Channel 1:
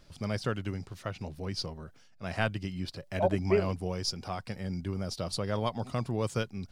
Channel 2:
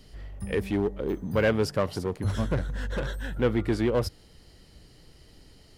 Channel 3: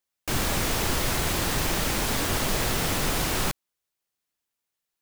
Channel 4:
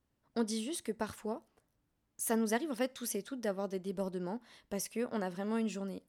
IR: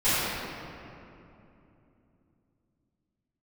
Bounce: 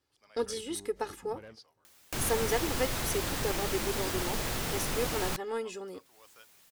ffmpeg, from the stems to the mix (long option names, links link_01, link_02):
-filter_complex "[0:a]highpass=910,volume=-18.5dB[link_01];[1:a]acompressor=threshold=-28dB:ratio=6,volume=-18.5dB[link_02];[2:a]acompressor=mode=upward:threshold=-28dB:ratio=2.5,adelay=1850,volume=-7.5dB[link_03];[3:a]highpass=110,aecho=1:1:2.4:0.89,aeval=exprs='0.106*(cos(1*acos(clip(val(0)/0.106,-1,1)))-cos(1*PI/2))+0.00299*(cos(7*acos(clip(val(0)/0.106,-1,1)))-cos(7*PI/2))':channel_layout=same,volume=1dB,asplit=2[link_04][link_05];[link_05]apad=whole_len=254873[link_06];[link_02][link_06]sidechaingate=range=-33dB:threshold=-58dB:ratio=16:detection=peak[link_07];[link_01][link_07][link_03][link_04]amix=inputs=4:normalize=0"